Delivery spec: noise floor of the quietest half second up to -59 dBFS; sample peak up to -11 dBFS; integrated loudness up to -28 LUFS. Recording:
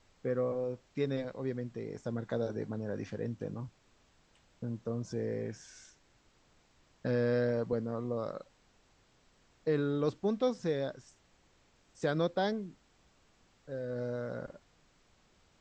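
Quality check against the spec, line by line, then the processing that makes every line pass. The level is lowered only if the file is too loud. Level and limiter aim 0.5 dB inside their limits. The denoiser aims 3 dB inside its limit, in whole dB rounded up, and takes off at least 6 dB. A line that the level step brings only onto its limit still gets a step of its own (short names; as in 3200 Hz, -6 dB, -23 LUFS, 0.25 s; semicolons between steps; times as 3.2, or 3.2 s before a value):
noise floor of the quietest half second -68 dBFS: OK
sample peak -18.0 dBFS: OK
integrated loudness -35.5 LUFS: OK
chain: none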